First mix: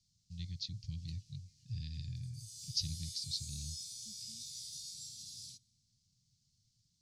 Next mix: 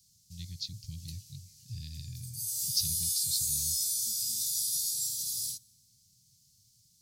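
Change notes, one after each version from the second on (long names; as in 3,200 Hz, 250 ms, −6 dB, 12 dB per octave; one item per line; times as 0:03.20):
background +5.5 dB
master: remove high-frequency loss of the air 110 metres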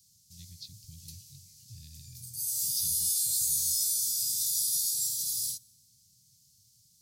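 speech −8.0 dB
background: add high-shelf EQ 8,300 Hz +4.5 dB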